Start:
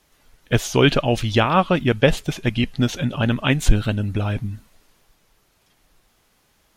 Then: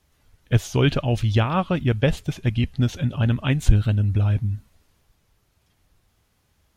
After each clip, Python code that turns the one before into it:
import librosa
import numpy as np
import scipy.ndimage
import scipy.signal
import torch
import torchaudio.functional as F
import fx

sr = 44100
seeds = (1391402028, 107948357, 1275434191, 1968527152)

y = fx.peak_eq(x, sr, hz=80.0, db=14.0, octaves=1.7)
y = y * 10.0 ** (-7.0 / 20.0)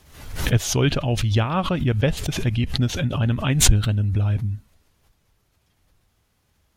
y = fx.pre_swell(x, sr, db_per_s=77.0)
y = y * 10.0 ** (-1.0 / 20.0)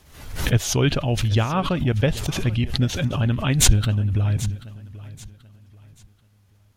y = fx.echo_feedback(x, sr, ms=784, feedback_pct=31, wet_db=-18)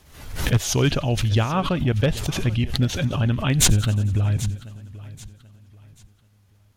y = np.minimum(x, 2.0 * 10.0 ** (-9.0 / 20.0) - x)
y = fx.echo_wet_highpass(y, sr, ms=89, feedback_pct=68, hz=2800.0, wet_db=-21.5)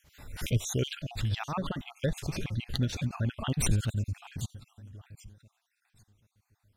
y = fx.spec_dropout(x, sr, seeds[0], share_pct=45)
y = y * 10.0 ** (-8.0 / 20.0)